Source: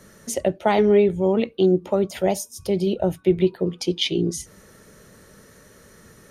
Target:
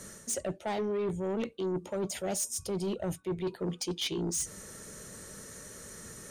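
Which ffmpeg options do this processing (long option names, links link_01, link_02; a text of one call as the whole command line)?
ffmpeg -i in.wav -af "equalizer=frequency=7800:width_type=o:width=0.84:gain=12.5,areverse,acompressor=threshold=-26dB:ratio=8,areverse,asoftclip=type=tanh:threshold=-27dB" out.wav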